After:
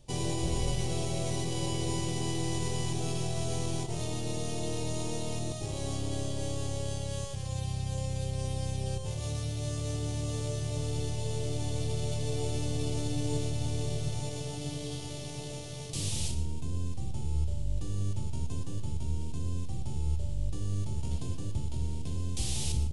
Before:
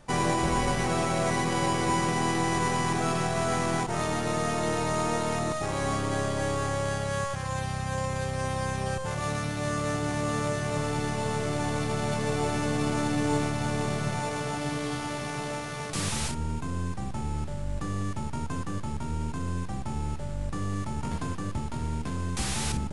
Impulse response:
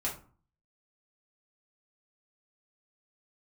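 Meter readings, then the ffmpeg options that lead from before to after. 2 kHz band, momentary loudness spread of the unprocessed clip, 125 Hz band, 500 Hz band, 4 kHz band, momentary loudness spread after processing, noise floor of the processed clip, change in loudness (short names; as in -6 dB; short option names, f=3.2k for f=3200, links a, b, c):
-15.0 dB, 7 LU, -1.0 dB, -7.5 dB, -3.0 dB, 5 LU, -38 dBFS, -5.0 dB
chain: -filter_complex "[0:a]firequalizer=gain_entry='entry(120,0);entry(200,-11);entry(350,-5);entry(1400,-24);entry(3000,-3)':delay=0.05:min_phase=1,asplit=2[a][b];[1:a]atrim=start_sample=2205,adelay=107[c];[b][c]afir=irnorm=-1:irlink=0,volume=-15dB[d];[a][d]amix=inputs=2:normalize=0"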